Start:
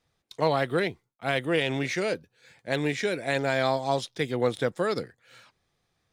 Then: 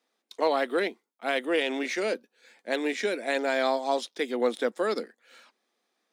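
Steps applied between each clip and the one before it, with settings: elliptic high-pass 220 Hz, stop band 40 dB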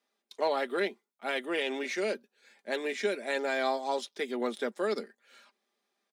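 comb 5 ms, depth 51%; trim -4.5 dB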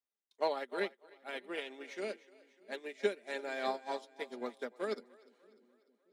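two-band feedback delay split 390 Hz, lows 631 ms, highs 298 ms, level -9.5 dB; upward expansion 2.5:1, over -38 dBFS; trim -1 dB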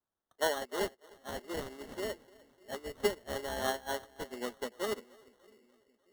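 sample-and-hold 18×; trim +2 dB

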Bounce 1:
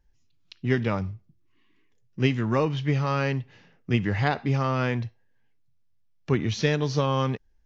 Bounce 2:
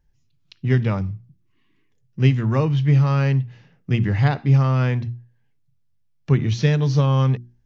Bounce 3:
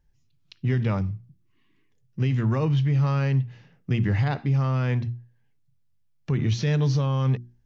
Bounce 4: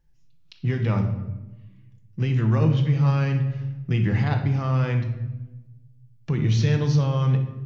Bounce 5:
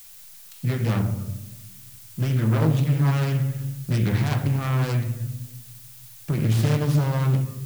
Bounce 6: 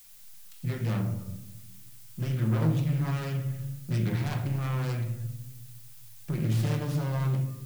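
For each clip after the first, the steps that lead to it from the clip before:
peaking EQ 130 Hz +11 dB 1 oct; hum notches 60/120/180/240/300/360 Hz
peak limiter -14 dBFS, peak gain reduction 9.5 dB; trim -1.5 dB
simulated room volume 520 m³, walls mixed, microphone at 0.73 m
self-modulated delay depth 0.72 ms; added noise blue -46 dBFS
simulated room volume 530 m³, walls furnished, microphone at 0.92 m; trim -8 dB

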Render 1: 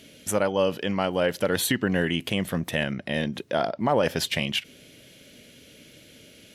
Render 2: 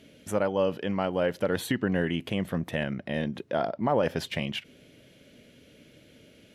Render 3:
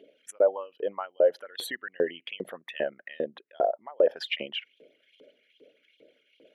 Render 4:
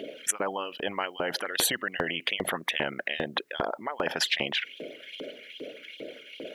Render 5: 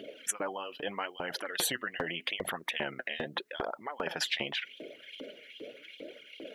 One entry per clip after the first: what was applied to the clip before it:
treble shelf 2.8 kHz -11 dB; trim -2 dB
resonances exaggerated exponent 2; LFO high-pass saw up 2.5 Hz 400–3700 Hz
spectrum-flattening compressor 4:1
flange 0.8 Hz, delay 0.6 ms, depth 8.8 ms, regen +37%; trim -1.5 dB

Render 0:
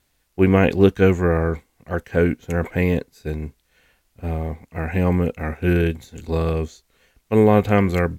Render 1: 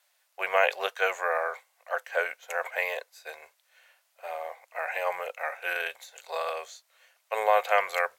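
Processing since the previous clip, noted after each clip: elliptic high-pass 580 Hz, stop band 50 dB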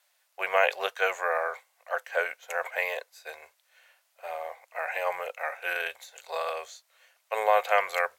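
peaking EQ 79 Hz +4 dB 0.77 oct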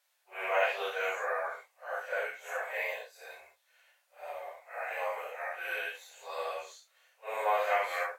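phase randomisation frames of 200 ms; trim -5 dB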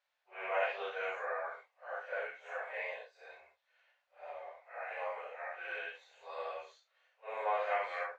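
distance through air 190 m; trim -4 dB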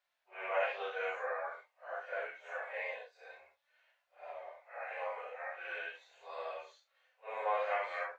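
flange 0.48 Hz, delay 2.8 ms, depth 1.3 ms, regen +66%; trim +4 dB

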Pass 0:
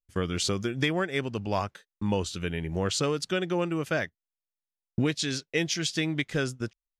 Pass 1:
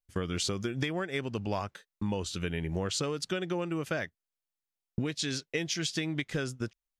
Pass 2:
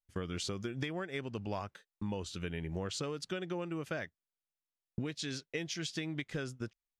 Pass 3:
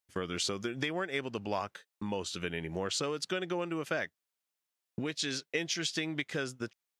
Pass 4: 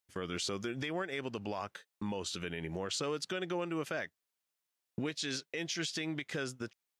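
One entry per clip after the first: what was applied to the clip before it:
compression, threshold -28 dBFS, peak gain reduction 7.5 dB
treble shelf 6.1 kHz -4.5 dB; trim -5.5 dB
high-pass 340 Hz 6 dB/octave; trim +6.5 dB
peak limiter -26.5 dBFS, peak gain reduction 9 dB

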